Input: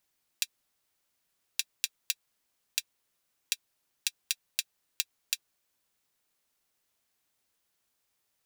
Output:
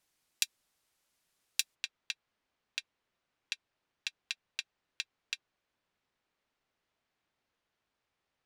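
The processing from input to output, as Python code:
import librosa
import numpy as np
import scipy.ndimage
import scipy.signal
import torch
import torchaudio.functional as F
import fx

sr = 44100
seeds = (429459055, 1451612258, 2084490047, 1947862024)

y = fx.bessel_lowpass(x, sr, hz=fx.steps((0.0, 12000.0), (1.74, 2600.0)), order=2)
y = y * librosa.db_to_amplitude(1.5)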